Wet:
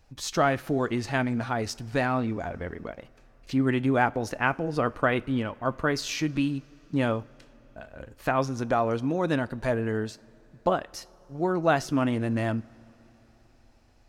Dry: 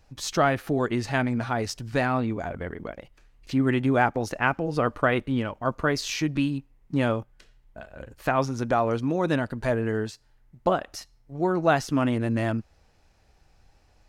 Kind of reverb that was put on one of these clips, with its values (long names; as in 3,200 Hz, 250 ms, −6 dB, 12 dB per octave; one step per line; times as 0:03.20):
coupled-rooms reverb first 0.33 s, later 4.5 s, from −18 dB, DRR 18 dB
level −1.5 dB